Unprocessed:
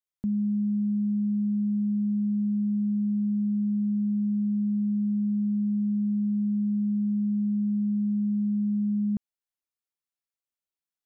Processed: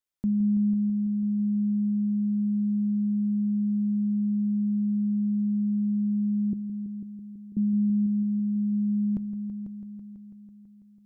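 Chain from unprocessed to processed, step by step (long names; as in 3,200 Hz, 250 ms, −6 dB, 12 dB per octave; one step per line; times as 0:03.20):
0:06.53–0:07.57: inverse Chebyshev high-pass filter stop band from 200 Hz
echo machine with several playback heads 165 ms, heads all three, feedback 56%, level −14 dB
on a send at −18 dB: convolution reverb RT60 0.35 s, pre-delay 3 ms
on the sum: level +2 dB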